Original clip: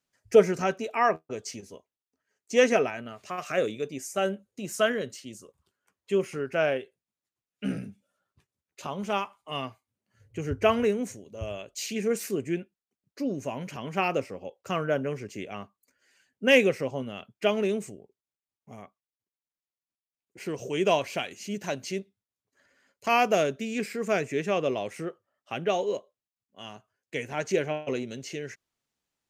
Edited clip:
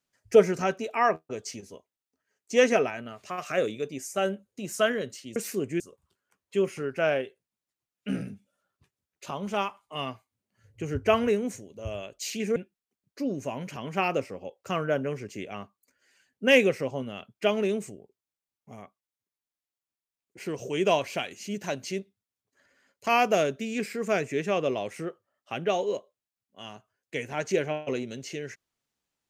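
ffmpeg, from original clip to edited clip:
-filter_complex "[0:a]asplit=4[a][b][c][d];[a]atrim=end=5.362[e];[b]atrim=start=12.118:end=12.562[f];[c]atrim=start=5.358:end=12.122[g];[d]atrim=start=12.558[h];[e][f]acrossfade=d=0.004:c1=hsin:c2=hsin[i];[i][g]acrossfade=d=0.004:c1=hsin:c2=hsin[j];[j][h]acrossfade=d=0.004:c1=hsin:c2=hsin"

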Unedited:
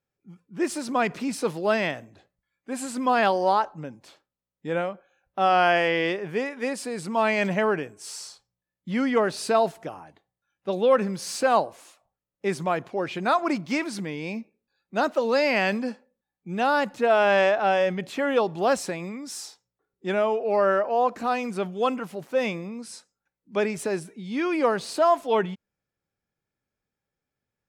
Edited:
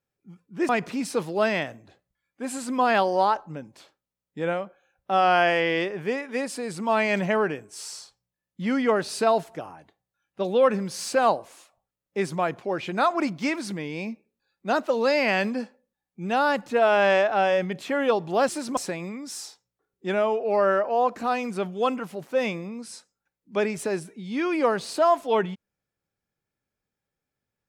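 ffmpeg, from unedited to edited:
-filter_complex "[0:a]asplit=4[a][b][c][d];[a]atrim=end=0.692[e];[b]atrim=start=0.968:end=18.772[f];[c]atrim=start=0.688:end=0.972[g];[d]atrim=start=18.768[h];[e][f]acrossfade=d=0.004:c1=hsin:c2=hsin[i];[i][g]acrossfade=d=0.004:c1=hsin:c2=hsin[j];[j][h]acrossfade=d=0.004:c1=hsin:c2=hsin"

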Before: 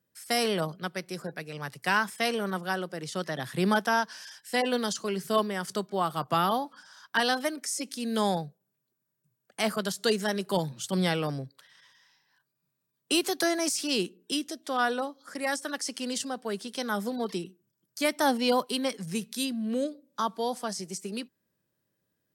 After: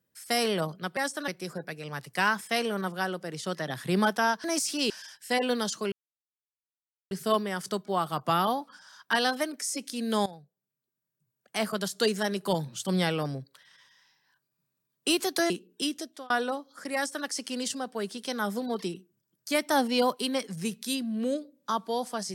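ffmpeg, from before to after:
-filter_complex "[0:a]asplit=9[a][b][c][d][e][f][g][h][i];[a]atrim=end=0.972[j];[b]atrim=start=15.448:end=15.762[k];[c]atrim=start=0.968:end=4.132[l];[d]atrim=start=13.538:end=14.002[m];[e]atrim=start=4.128:end=5.15,asetpts=PTS-STARTPTS,afade=t=out:st=1.018:d=0.004:c=hsin,apad=pad_dur=1.19[n];[f]atrim=start=5.15:end=8.3,asetpts=PTS-STARTPTS,afade=t=in:d=0.004:c=hsin,afade=t=out:st=3.146:d=0.004:c=hsin:silence=0.133352[o];[g]atrim=start=8.3:end=13.542,asetpts=PTS-STARTPTS,afade=t=in:d=1.64:silence=0.133352[p];[h]atrim=start=13.998:end=14.8,asetpts=PTS-STARTPTS,afade=t=out:st=0.532:d=0.27[q];[i]atrim=start=14.8,asetpts=PTS-STARTPTS,afade=t=in:d=0.004:c=hsin[r];[j][k]acrossfade=d=0.004:c1=hsin:c2=hsin[s];[s][l]acrossfade=d=0.004:c1=hsin:c2=hsin[t];[t][m]acrossfade=d=0.004:c1=hsin:c2=hsin[u];[n][o][p]concat=n=3:v=0:a=1[v];[u][v]acrossfade=d=0.004:c1=hsin:c2=hsin[w];[q][r]concat=n=2:v=0:a=1[x];[w][x]acrossfade=d=0.004:c1=hsin:c2=hsin"

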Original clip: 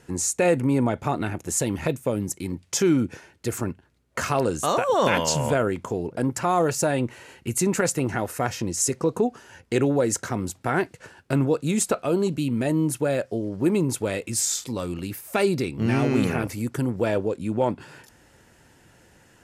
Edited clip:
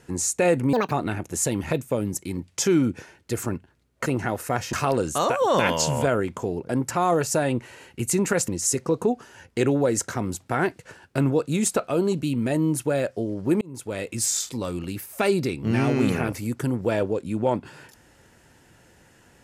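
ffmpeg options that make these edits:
-filter_complex "[0:a]asplit=7[a][b][c][d][e][f][g];[a]atrim=end=0.734[h];[b]atrim=start=0.73:end=1.06,asetpts=PTS-STARTPTS,asetrate=80262,aresample=44100,atrim=end_sample=7996,asetpts=PTS-STARTPTS[i];[c]atrim=start=1.056:end=4.212[j];[d]atrim=start=7.958:end=8.632[k];[e]atrim=start=4.208:end=7.962[l];[f]atrim=start=8.628:end=13.76,asetpts=PTS-STARTPTS,afade=t=out:st=5.128:d=0.004:c=hsin[m];[g]atrim=start=13.76,asetpts=PTS-STARTPTS,afade=t=in:d=0.52[n];[h][i]acrossfade=d=0.004:c1=hsin:c2=hsin[o];[o][j]acrossfade=d=0.004:c1=hsin:c2=hsin[p];[p][k]acrossfade=d=0.004:c1=hsin:c2=hsin[q];[q][l]acrossfade=d=0.004:c1=hsin:c2=hsin[r];[m][n]concat=n=2:v=0:a=1[s];[r][s]acrossfade=d=0.004:c1=hsin:c2=hsin"

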